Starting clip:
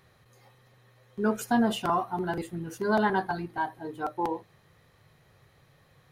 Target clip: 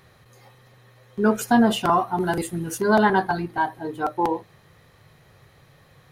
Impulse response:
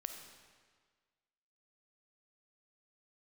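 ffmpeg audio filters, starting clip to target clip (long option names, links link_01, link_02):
-filter_complex "[0:a]asettb=1/sr,asplit=3[link_01][link_02][link_03];[link_01]atrim=end=2.204[link_04];[link_02]atrim=start=2.2:end=2.81,asetpts=PTS-STARTPTS,afade=type=in:duration=0.004:curve=qsin,afade=type=out:start_time=0.606:duration=0.004:curve=qsin,equalizer=frequency=10000:width=0.66:gain=10.5[link_05];[link_03]atrim=start=2.806[link_06];[link_04][link_05]acrossfade=duration=0.004:curve1=hsin:curve2=qsin[link_07];[link_07][link_06]acrossfade=duration=0.004:curve1=qsin:curve2=hsin,volume=7dB"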